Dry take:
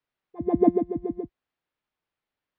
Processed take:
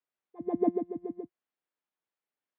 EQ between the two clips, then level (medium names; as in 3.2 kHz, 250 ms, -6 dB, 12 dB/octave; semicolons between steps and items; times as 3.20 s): high-pass 220 Hz 12 dB/octave; distance through air 130 m; -6.5 dB